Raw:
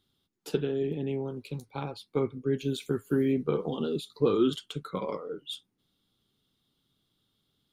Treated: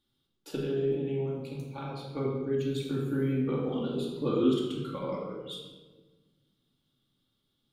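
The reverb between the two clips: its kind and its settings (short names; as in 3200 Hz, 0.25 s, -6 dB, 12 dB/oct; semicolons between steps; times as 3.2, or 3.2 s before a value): shoebox room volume 980 m³, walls mixed, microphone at 2.4 m; gain -7 dB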